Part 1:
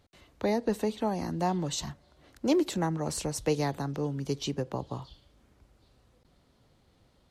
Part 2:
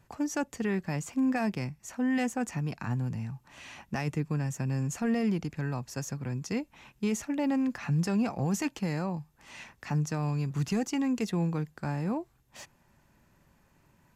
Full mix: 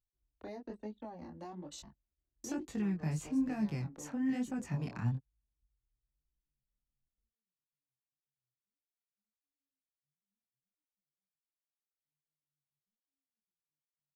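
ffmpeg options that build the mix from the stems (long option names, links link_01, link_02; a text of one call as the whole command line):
ffmpeg -i stem1.wav -i stem2.wav -filter_complex "[0:a]flanger=delay=2.6:depth=1:regen=-37:speed=0.36:shape=sinusoidal,volume=-7.5dB,asplit=2[link_01][link_02];[1:a]adelay=2150,volume=1.5dB[link_03];[link_02]apad=whole_len=719098[link_04];[link_03][link_04]sidechaingate=range=-51dB:threshold=-58dB:ratio=16:detection=peak[link_05];[link_01][link_05]amix=inputs=2:normalize=0,anlmdn=0.00631,acrossover=split=250[link_06][link_07];[link_07]acompressor=threshold=-40dB:ratio=6[link_08];[link_06][link_08]amix=inputs=2:normalize=0,flanger=delay=19:depth=7.2:speed=1.1" out.wav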